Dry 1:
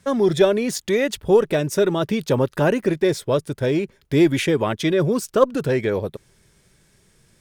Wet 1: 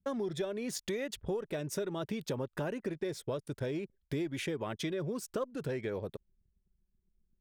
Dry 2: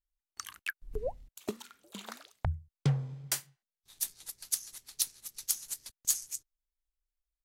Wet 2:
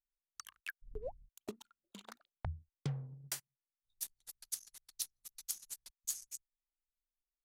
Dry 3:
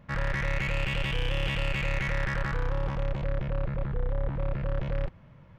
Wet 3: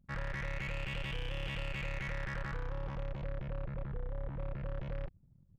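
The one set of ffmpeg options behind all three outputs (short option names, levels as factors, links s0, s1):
-af "acompressor=threshold=0.0562:ratio=6,anlmdn=0.0251,volume=0.398"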